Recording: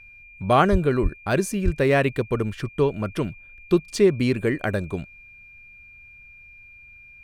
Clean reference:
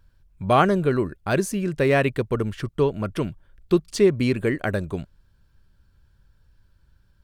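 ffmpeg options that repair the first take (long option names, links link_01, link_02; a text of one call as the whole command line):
ffmpeg -i in.wav -filter_complex "[0:a]bandreject=frequency=2400:width=30,asplit=3[link_01][link_02][link_03];[link_01]afade=type=out:start_time=0.71:duration=0.02[link_04];[link_02]highpass=frequency=140:width=0.5412,highpass=frequency=140:width=1.3066,afade=type=in:start_time=0.71:duration=0.02,afade=type=out:start_time=0.83:duration=0.02[link_05];[link_03]afade=type=in:start_time=0.83:duration=0.02[link_06];[link_04][link_05][link_06]amix=inputs=3:normalize=0,asplit=3[link_07][link_08][link_09];[link_07]afade=type=out:start_time=1.02:duration=0.02[link_10];[link_08]highpass=frequency=140:width=0.5412,highpass=frequency=140:width=1.3066,afade=type=in:start_time=1.02:duration=0.02,afade=type=out:start_time=1.14:duration=0.02[link_11];[link_09]afade=type=in:start_time=1.14:duration=0.02[link_12];[link_10][link_11][link_12]amix=inputs=3:normalize=0,asplit=3[link_13][link_14][link_15];[link_13]afade=type=out:start_time=1.64:duration=0.02[link_16];[link_14]highpass=frequency=140:width=0.5412,highpass=frequency=140:width=1.3066,afade=type=in:start_time=1.64:duration=0.02,afade=type=out:start_time=1.76:duration=0.02[link_17];[link_15]afade=type=in:start_time=1.76:duration=0.02[link_18];[link_16][link_17][link_18]amix=inputs=3:normalize=0" out.wav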